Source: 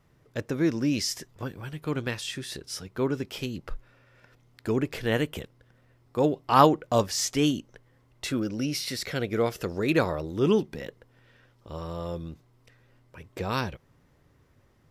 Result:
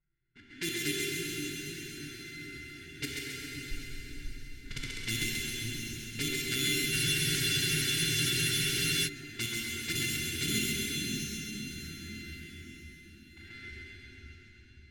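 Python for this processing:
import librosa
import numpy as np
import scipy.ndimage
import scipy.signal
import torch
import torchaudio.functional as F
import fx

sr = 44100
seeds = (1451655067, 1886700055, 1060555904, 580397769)

p1 = np.r_[np.sort(x[:len(x) // 64 * 64].reshape(-1, 64), axis=1).ravel(), x[len(x) // 64 * 64:]]
p2 = fx.brickwall_bandstop(p1, sr, low_hz=410.0, high_hz=1400.0)
p3 = fx.peak_eq(p2, sr, hz=230.0, db=-12.0, octaves=2.8)
p4 = fx.level_steps(p3, sr, step_db=16)
p5 = fx.env_flanger(p4, sr, rest_ms=5.7, full_db=-31.0)
p6 = fx.env_lowpass(p5, sr, base_hz=1700.0, full_db=-36.0)
p7 = p6 + fx.echo_split(p6, sr, split_hz=310.0, low_ms=532, high_ms=134, feedback_pct=52, wet_db=-3.0, dry=0)
p8 = fx.rev_plate(p7, sr, seeds[0], rt60_s=4.9, hf_ratio=0.95, predelay_ms=0, drr_db=-3.0)
p9 = fx.spec_freeze(p8, sr, seeds[1], at_s=6.95, hold_s=2.12)
y = p9 * 10.0 ** (2.0 / 20.0)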